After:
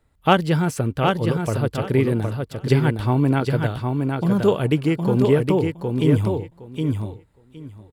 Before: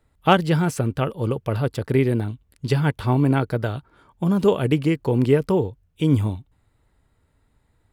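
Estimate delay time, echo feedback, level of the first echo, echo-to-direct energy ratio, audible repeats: 764 ms, 17%, −4.5 dB, −4.5 dB, 2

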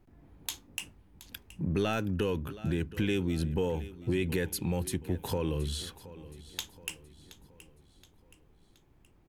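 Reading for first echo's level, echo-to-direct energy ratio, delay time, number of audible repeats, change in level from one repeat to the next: −17.0 dB, −16.0 dB, 723 ms, 3, −6.5 dB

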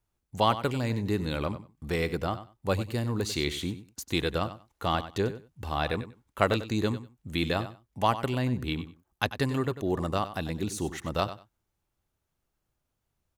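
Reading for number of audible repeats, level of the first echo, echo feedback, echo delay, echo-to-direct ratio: 2, −13.0 dB, 17%, 95 ms, −13.0 dB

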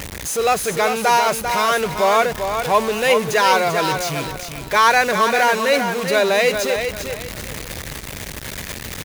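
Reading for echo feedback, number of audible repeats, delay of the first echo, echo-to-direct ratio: 28%, 3, 394 ms, −6.5 dB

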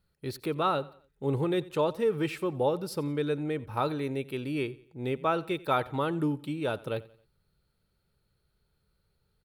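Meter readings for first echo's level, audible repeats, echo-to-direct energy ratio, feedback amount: −20.5 dB, 2, −20.0 dB, 40%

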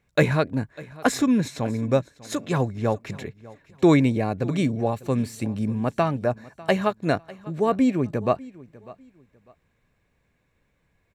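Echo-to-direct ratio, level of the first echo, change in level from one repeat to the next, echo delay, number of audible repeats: −20.0 dB, −20.5 dB, −11.5 dB, 598 ms, 2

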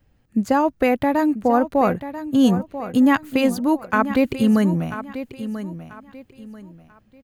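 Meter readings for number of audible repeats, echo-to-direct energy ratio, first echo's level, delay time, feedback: 3, −11.5 dB, −12.0 dB, 989 ms, 29%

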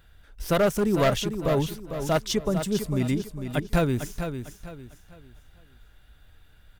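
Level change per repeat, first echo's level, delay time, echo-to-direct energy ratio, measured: −10.0 dB, −8.5 dB, 451 ms, −8.0 dB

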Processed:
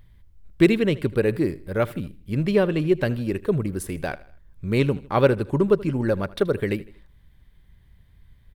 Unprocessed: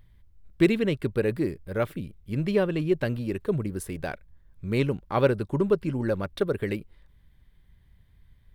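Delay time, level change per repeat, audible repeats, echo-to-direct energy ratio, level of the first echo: 79 ms, −7.0 dB, 3, −19.0 dB, −20.0 dB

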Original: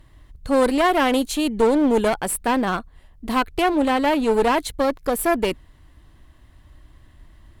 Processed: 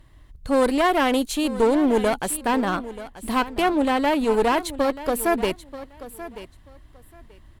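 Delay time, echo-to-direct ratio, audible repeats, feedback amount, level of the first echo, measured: 934 ms, −15.0 dB, 2, 19%, −15.0 dB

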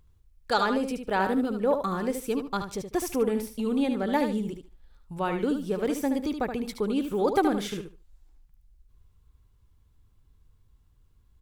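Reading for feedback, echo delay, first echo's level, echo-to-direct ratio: 18%, 74 ms, −7.5 dB, −7.5 dB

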